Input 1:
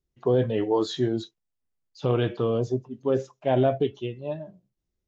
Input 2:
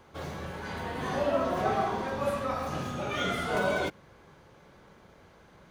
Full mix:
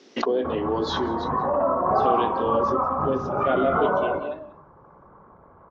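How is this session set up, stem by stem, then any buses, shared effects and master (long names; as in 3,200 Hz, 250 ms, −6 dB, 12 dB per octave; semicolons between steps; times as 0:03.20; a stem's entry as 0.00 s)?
−1.0 dB, 0.00 s, no send, echo send −19 dB, sub-octave generator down 2 octaves, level +4 dB; Chebyshev band-pass filter 240–5,800 Hz, order 4; mains-hum notches 50/100/150/200/250/300/350/400/450 Hz
+1.0 dB, 0.30 s, no send, echo send −13.5 dB, spectral envelope exaggerated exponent 1.5; low-pass with resonance 1,100 Hz, resonance Q 4.2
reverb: not used
echo: single-tap delay 184 ms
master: background raised ahead of every attack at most 36 dB per second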